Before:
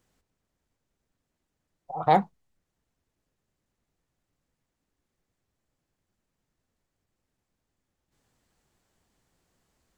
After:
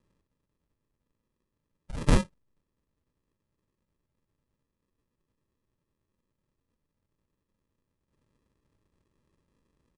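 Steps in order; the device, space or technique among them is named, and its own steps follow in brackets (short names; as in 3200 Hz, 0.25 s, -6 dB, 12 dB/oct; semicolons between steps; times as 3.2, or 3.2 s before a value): crushed at another speed (playback speed 2×; sample-and-hold 30×; playback speed 0.5×)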